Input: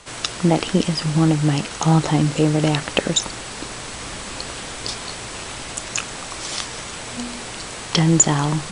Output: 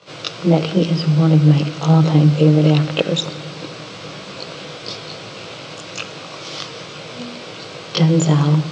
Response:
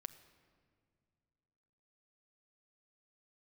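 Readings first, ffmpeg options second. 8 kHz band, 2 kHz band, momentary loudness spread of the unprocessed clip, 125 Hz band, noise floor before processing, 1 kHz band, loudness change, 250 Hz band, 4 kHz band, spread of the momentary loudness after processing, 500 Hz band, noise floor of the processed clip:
-11.5 dB, -2.0 dB, 13 LU, +6.0 dB, -33 dBFS, -2.0 dB, +6.0 dB, +3.5 dB, -0.5 dB, 19 LU, +4.0 dB, -34 dBFS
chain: -filter_complex "[0:a]highpass=f=120:w=0.5412,highpass=f=120:w=1.3066,equalizer=f=160:t=q:w=4:g=3,equalizer=f=230:t=q:w=4:g=-6,equalizer=f=520:t=q:w=4:g=6,equalizer=f=870:t=q:w=4:g=-6,equalizer=f=1.8k:t=q:w=4:g=-8,lowpass=f=5.1k:w=0.5412,lowpass=f=5.1k:w=1.3066,asplit=2[a][b];[1:a]atrim=start_sample=2205,lowshelf=f=130:g=6,adelay=20[c];[b][c]afir=irnorm=-1:irlink=0,volume=9.5dB[d];[a][d]amix=inputs=2:normalize=0,volume=-5.5dB"

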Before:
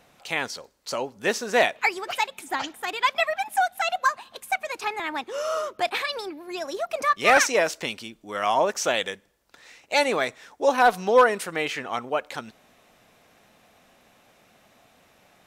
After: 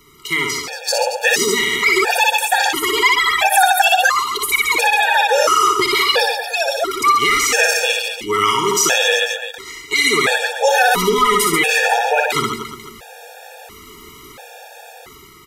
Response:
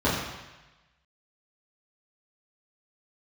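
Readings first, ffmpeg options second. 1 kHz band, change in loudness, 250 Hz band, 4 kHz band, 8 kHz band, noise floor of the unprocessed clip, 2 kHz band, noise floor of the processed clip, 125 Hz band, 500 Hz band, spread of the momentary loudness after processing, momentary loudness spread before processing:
+9.0 dB, +10.0 dB, +8.5 dB, +14.0 dB, +14.5 dB, -60 dBFS, +11.0 dB, -41 dBFS, +11.0 dB, +5.5 dB, 7 LU, 14 LU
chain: -filter_complex "[0:a]highshelf=f=12k:g=10,aecho=1:1:2.4:0.51,acrossover=split=210|1500[a][b][c];[b]acompressor=threshold=-31dB:ratio=6[d];[a][d][c]amix=inputs=3:normalize=0,aecho=1:1:60|135|228.8|345.9|492.4:0.631|0.398|0.251|0.158|0.1,dynaudnorm=f=160:g=11:m=8.5dB,asplit=2[e][f];[1:a]atrim=start_sample=2205,asetrate=57330,aresample=44100[g];[f][g]afir=irnorm=-1:irlink=0,volume=-30.5dB[h];[e][h]amix=inputs=2:normalize=0,alimiter=level_in=11.5dB:limit=-1dB:release=50:level=0:latency=1,afftfilt=real='re*gt(sin(2*PI*0.73*pts/sr)*(1-2*mod(floor(b*sr/1024/470),2)),0)':imag='im*gt(sin(2*PI*0.73*pts/sr)*(1-2*mod(floor(b*sr/1024/470),2)),0)':win_size=1024:overlap=0.75,volume=-1dB"

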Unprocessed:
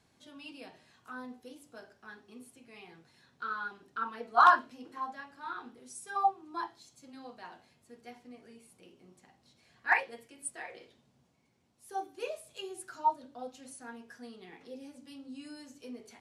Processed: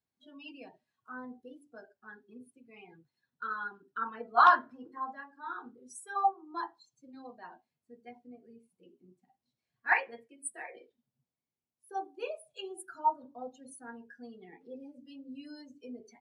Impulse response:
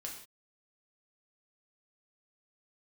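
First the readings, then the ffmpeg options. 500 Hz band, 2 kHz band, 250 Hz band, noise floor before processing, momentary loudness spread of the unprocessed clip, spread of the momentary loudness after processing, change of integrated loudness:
0.0 dB, 0.0 dB, 0.0 dB, -70 dBFS, 21 LU, 22 LU, 0.0 dB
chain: -af "afftdn=nr=24:nf=-50"

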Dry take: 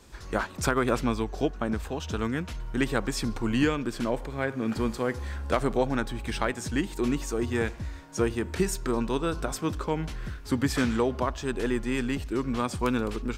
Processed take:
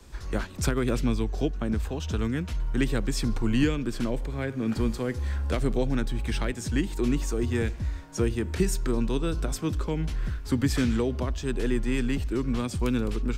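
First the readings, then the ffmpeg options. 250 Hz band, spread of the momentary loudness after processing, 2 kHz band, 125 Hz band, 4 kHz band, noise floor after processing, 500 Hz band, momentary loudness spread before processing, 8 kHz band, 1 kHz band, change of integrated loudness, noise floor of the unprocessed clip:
+1.0 dB, 5 LU, -3.0 dB, +4.5 dB, 0.0 dB, -38 dBFS, -2.0 dB, 6 LU, 0.0 dB, -7.0 dB, +0.5 dB, -42 dBFS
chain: -filter_complex "[0:a]lowshelf=f=100:g=9,acrossover=split=160|520|1800[a][b][c][d];[c]acompressor=threshold=-42dB:ratio=6[e];[a][b][e][d]amix=inputs=4:normalize=0"

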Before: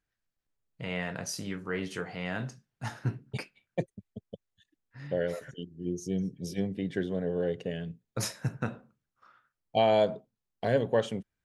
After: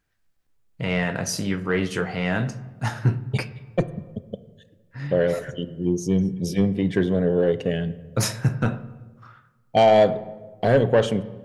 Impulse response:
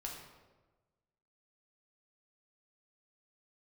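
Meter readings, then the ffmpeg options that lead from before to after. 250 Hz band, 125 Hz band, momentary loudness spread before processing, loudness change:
+10.5 dB, +11.5 dB, 15 LU, +9.5 dB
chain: -filter_complex "[0:a]aeval=exprs='0.237*(cos(1*acos(clip(val(0)/0.237,-1,1)))-cos(1*PI/2))+0.0266*(cos(5*acos(clip(val(0)/0.237,-1,1)))-cos(5*PI/2))':c=same,asplit=2[a][b];[1:a]atrim=start_sample=2205,lowpass=3.7k,lowshelf=f=210:g=8[c];[b][c]afir=irnorm=-1:irlink=0,volume=-9dB[d];[a][d]amix=inputs=2:normalize=0,volume=5dB"

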